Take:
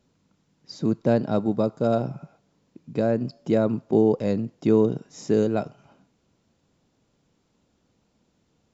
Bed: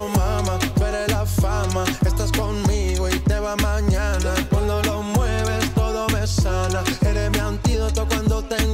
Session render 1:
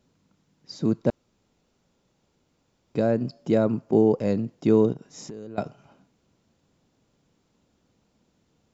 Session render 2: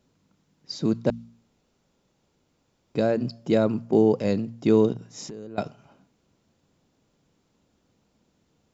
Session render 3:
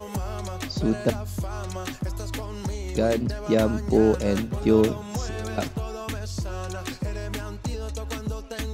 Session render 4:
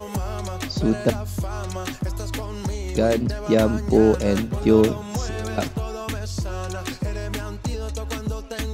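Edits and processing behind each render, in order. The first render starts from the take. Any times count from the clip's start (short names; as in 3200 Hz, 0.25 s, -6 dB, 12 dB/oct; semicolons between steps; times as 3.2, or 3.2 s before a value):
1.1–2.95 room tone; 3.63–4.32 bell 3700 Hz -6.5 dB 0.24 oct; 4.92–5.58 compressor 16:1, threshold -34 dBFS
de-hum 57.88 Hz, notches 4; dynamic EQ 3900 Hz, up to +7 dB, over -48 dBFS, Q 0.71
add bed -11 dB
gain +3 dB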